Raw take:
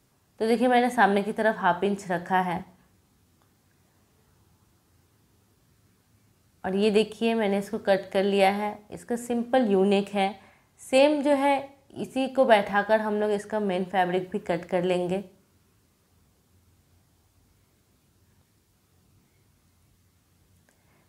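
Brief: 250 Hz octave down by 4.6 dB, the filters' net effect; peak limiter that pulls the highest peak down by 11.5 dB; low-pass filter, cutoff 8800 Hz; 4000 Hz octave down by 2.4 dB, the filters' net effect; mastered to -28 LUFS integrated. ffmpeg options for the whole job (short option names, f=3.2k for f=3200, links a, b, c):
-af "lowpass=8.8k,equalizer=f=250:t=o:g=-6,equalizer=f=4k:t=o:g=-3.5,volume=1.5dB,alimiter=limit=-16.5dB:level=0:latency=1"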